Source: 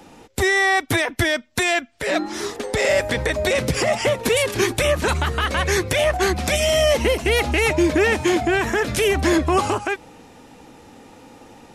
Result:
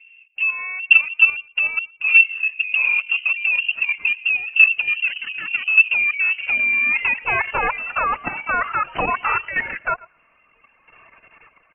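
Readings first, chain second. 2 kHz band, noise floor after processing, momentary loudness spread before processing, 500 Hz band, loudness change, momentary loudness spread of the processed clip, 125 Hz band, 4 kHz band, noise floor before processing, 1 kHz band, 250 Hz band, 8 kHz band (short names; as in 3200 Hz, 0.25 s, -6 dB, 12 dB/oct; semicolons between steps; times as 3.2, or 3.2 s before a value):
+6.0 dB, -59 dBFS, 6 LU, -17.5 dB, +2.5 dB, 11 LU, under -15 dB, -6.5 dB, -47 dBFS, -1.0 dB, -19.0 dB, under -40 dB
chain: nonlinear frequency compression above 2200 Hz 1.5:1; HPF 70 Hz 24 dB/oct; reverb removal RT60 1.6 s; bell 270 Hz +10.5 dB 0.56 oct; band-pass sweep 340 Hz -> 1900 Hz, 5.71–7.93; AGC gain up to 11.5 dB; feedback echo 0.116 s, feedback 15%, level -23 dB; level quantiser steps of 10 dB; careless resampling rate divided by 8×, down none, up hold; inverted band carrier 3000 Hz; gain +2 dB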